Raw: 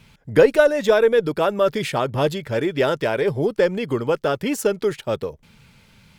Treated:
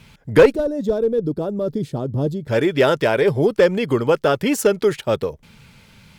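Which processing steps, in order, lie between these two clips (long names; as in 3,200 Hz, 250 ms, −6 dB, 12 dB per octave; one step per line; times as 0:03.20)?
asymmetric clip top −11 dBFS
0:00.52–0:02.48: drawn EQ curve 280 Hz 0 dB, 2,400 Hz −29 dB, 3,900 Hz −16 dB
level +4 dB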